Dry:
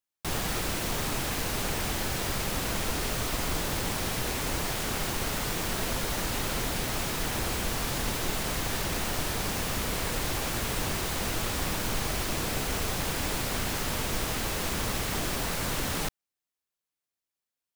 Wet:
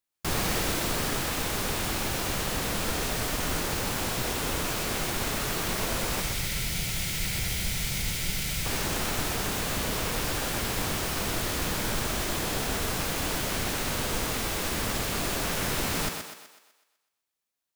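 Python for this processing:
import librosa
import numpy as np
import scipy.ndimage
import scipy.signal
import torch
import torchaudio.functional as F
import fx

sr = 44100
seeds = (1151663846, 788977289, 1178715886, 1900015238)

y = fx.spec_box(x, sr, start_s=6.21, length_s=2.44, low_hz=200.0, high_hz=1300.0, gain_db=-12)
y = fx.formant_shift(y, sr, semitones=5)
y = fx.echo_thinned(y, sr, ms=125, feedback_pct=48, hz=240.0, wet_db=-5.0)
y = fx.rider(y, sr, range_db=10, speed_s=2.0)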